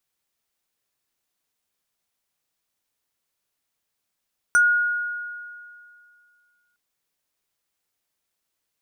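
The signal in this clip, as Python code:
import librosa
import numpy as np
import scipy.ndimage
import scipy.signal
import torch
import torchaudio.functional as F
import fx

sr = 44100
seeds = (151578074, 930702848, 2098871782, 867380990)

y = fx.fm2(sr, length_s=2.21, level_db=-12, carrier_hz=1440.0, ratio=5.13, index=0.62, index_s=0.11, decay_s=2.29, shape='exponential')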